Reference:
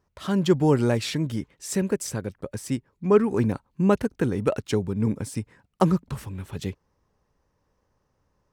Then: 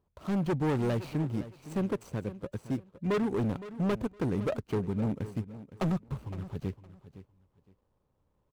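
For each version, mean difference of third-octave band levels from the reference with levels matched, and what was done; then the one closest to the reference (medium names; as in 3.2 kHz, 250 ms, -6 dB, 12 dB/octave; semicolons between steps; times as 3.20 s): 5.5 dB: median filter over 25 samples; hard clipper -22 dBFS, distortion -8 dB; on a send: feedback delay 513 ms, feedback 22%, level -15 dB; on the sum: trim -3.5 dB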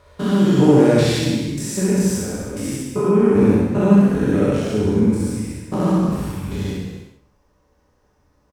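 8.5 dB: spectrogram pixelated in time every 200 ms; on a send: feedback delay 65 ms, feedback 29%, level -3 dB; on the sum: gated-style reverb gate 430 ms falling, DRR -2 dB; trim +5 dB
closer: first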